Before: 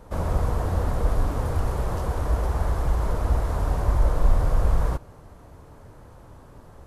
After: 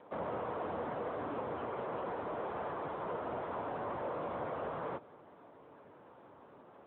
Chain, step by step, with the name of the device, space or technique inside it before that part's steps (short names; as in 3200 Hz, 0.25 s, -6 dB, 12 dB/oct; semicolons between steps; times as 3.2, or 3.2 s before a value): telephone (BPF 280–3100 Hz; soft clip -25.5 dBFS, distortion -20 dB; gain -3.5 dB; AMR-NB 10.2 kbps 8000 Hz)